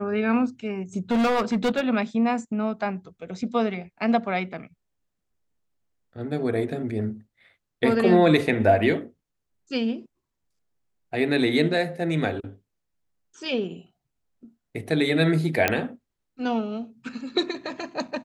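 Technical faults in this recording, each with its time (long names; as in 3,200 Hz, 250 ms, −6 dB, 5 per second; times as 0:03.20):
0:01.11–0:01.81: clipping −18.5 dBFS
0:15.68: click −5 dBFS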